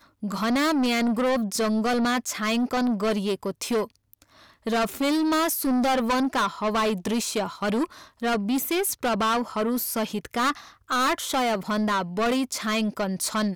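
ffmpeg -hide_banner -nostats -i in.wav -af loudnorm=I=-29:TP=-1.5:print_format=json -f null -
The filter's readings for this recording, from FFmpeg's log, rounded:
"input_i" : "-25.0",
"input_tp" : "-17.6",
"input_lra" : "1.5",
"input_thresh" : "-35.2",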